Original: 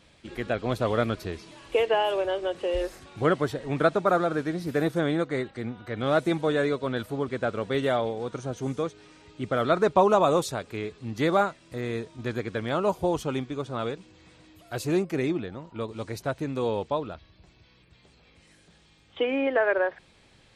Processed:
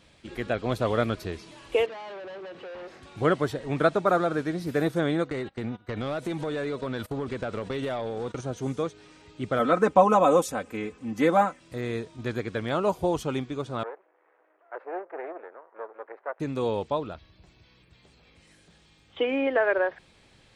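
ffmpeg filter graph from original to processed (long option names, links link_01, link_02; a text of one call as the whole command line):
ffmpeg -i in.wav -filter_complex "[0:a]asettb=1/sr,asplit=3[link_01][link_02][link_03];[link_01]atrim=end=1.864[link_04];[link_02]atrim=start=1.86:end=3.03,asetpts=PTS-STARTPTS,afade=type=in:duration=0.004:curve=qsin,afade=type=out:start_time=1.166:duration=0.004:curve=qsin,acompressor=threshold=-32dB:ratio=2:attack=3.2:release=140:knee=1:detection=peak,asoftclip=type=hard:threshold=-38dB,highpass=120,lowpass=3700[link_05];[link_03]atrim=start=3.026[link_06];[link_04][link_05]acrossfade=duration=0.004:curve1=hsin:curve2=qsin[link_07];[link_07][link_06]acrossfade=duration=0.004:curve1=qsin:curve2=hsin,asettb=1/sr,asplit=3[link_08][link_09][link_10];[link_08]atrim=end=5.304[link_11];[link_09]atrim=start=5.3:end=8.41,asetpts=PTS-STARTPTS,afade=type=in:duration=0.004:curve=qsin,afade=type=out:start_time=3.106:duration=0.004:curve=qsin,agate=range=-21dB:threshold=-41dB:ratio=16:release=100:detection=peak,acompressor=threshold=-34dB:ratio=6:attack=3.2:release=140:knee=1:detection=peak,aeval=exprs='0.0596*sin(PI/2*1.58*val(0)/0.0596)':channel_layout=same[link_12];[link_10]atrim=start=8.406[link_13];[link_11][link_12]acrossfade=duration=0.004:curve1=hsin:curve2=qsin[link_14];[link_14][link_13]acrossfade=duration=0.004:curve1=qsin:curve2=hsin,asettb=1/sr,asplit=3[link_15][link_16][link_17];[link_15]atrim=end=9.594[link_18];[link_16]atrim=start=9.59:end=11.6,asetpts=PTS-STARTPTS,afade=type=in:duration=0.004:curve=qsin,afade=type=out:start_time=2.006:duration=0.004:curve=qsin,highpass=60,equalizer=frequency=4100:width_type=o:width=0.6:gain=-11,aecho=1:1:3.9:0.78,atrim=end_sample=88641[link_19];[link_17]atrim=start=11.596[link_20];[link_18][link_19]acrossfade=duration=0.004:curve1=hsin:curve2=qsin[link_21];[link_21][link_20]acrossfade=duration=0.004:curve1=qsin:curve2=hsin,asettb=1/sr,asplit=3[link_22][link_23][link_24];[link_22]atrim=end=13.834[link_25];[link_23]atrim=start=13.83:end=16.4,asetpts=PTS-STARTPTS,afade=type=in:duration=0.004:curve=qsin,afade=type=out:start_time=2.566:duration=0.004:curve=qsin,aeval=exprs='max(val(0),0)':channel_layout=same,asuperpass=centerf=880:order=8:qfactor=0.63[link_26];[link_24]atrim=start=16.396[link_27];[link_25][link_26]acrossfade=duration=0.004:curve1=hsin:curve2=qsin[link_28];[link_28][link_27]acrossfade=duration=0.004:curve1=qsin:curve2=hsin" out.wav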